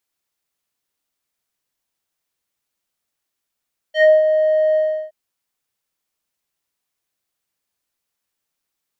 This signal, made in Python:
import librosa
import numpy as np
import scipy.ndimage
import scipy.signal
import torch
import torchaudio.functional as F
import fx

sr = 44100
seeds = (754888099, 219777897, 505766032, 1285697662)

y = fx.sub_voice(sr, note=75, wave='square', cutoff_hz=930.0, q=2.6, env_oct=2.0, env_s=0.15, attack_ms=102.0, decay_s=0.18, sustain_db=-7.5, release_s=0.35, note_s=0.82, slope=12)